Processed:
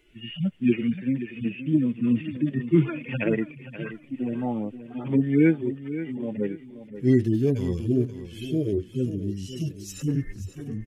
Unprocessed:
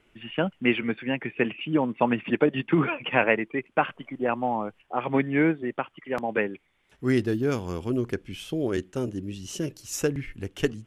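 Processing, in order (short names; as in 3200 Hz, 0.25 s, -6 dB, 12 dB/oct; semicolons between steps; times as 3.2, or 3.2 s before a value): median-filter separation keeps harmonic; bell 920 Hz -12.5 dB 1.6 oct, from 10 s 3800 Hz; feedback echo 0.529 s, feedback 32%, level -12.5 dB; gain +6.5 dB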